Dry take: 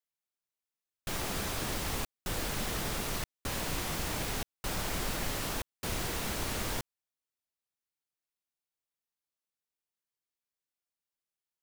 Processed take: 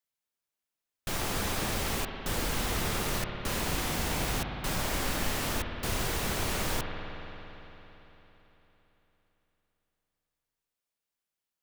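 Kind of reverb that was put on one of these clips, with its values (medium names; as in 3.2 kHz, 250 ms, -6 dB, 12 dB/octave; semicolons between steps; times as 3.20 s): spring tank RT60 3.8 s, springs 56 ms, chirp 80 ms, DRR 3.5 dB; trim +2.5 dB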